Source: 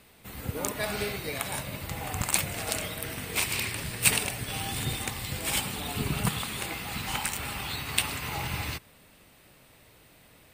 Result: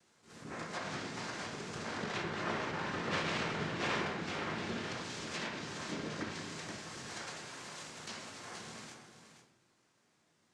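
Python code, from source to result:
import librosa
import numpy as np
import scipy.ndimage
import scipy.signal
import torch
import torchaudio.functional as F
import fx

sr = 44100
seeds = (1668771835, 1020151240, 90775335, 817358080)

y = fx.doppler_pass(x, sr, speed_mps=31, closest_m=26.0, pass_at_s=3.25)
y = scipy.signal.sosfilt(scipy.signal.butter(2, 150.0, 'highpass', fs=sr, output='sos'), y)
y = (np.mod(10.0 ** (21.5 / 20.0) * y + 1.0, 2.0) - 1.0) / 10.0 ** (21.5 / 20.0)
y = fx.noise_vocoder(y, sr, seeds[0], bands=3)
y = y + 10.0 ** (-10.5 / 20.0) * np.pad(y, (int(477 * sr / 1000.0), 0))[:len(y)]
y = fx.room_shoebox(y, sr, seeds[1], volume_m3=220.0, walls='mixed', distance_m=0.89)
y = fx.env_lowpass_down(y, sr, base_hz=2400.0, full_db=-32.0)
y = fx.attack_slew(y, sr, db_per_s=140.0)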